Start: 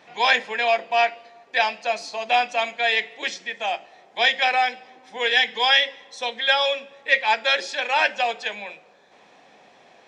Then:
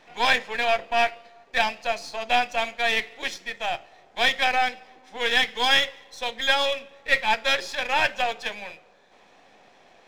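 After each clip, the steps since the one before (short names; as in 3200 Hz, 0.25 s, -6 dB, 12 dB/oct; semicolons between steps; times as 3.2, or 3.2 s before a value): half-wave gain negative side -7 dB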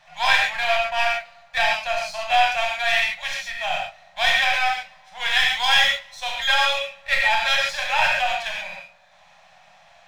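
elliptic band-stop 180–610 Hz, stop band 40 dB; non-linear reverb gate 0.16 s flat, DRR -2 dB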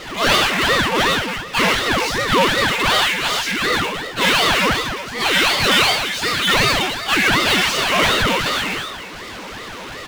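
echo 0.218 s -15.5 dB; power-law curve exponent 0.5; ring modulator with a swept carrier 710 Hz, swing 75%, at 2.7 Hz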